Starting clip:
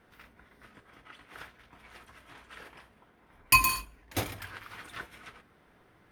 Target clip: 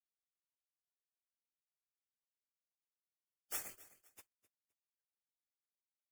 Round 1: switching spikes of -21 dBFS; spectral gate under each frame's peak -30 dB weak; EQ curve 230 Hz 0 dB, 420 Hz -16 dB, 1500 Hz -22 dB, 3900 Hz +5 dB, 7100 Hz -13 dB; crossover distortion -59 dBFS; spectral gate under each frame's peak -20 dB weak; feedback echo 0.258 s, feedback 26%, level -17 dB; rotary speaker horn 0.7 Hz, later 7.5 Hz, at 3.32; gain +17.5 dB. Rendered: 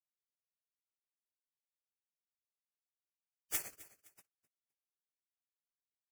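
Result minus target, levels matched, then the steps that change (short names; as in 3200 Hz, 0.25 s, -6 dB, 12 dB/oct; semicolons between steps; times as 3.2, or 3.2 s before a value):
switching spikes: distortion +9 dB
change: switching spikes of -31 dBFS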